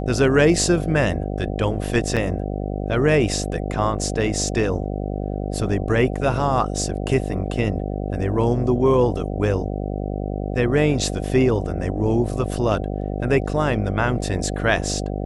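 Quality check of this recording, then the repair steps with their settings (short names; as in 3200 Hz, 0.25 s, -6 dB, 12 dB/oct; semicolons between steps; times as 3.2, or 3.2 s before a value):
buzz 50 Hz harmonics 15 -26 dBFS
2.16–2.17 gap 6.8 ms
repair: de-hum 50 Hz, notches 15; interpolate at 2.16, 6.8 ms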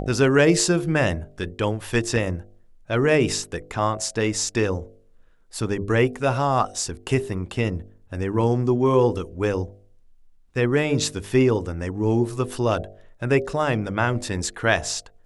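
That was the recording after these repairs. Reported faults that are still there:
none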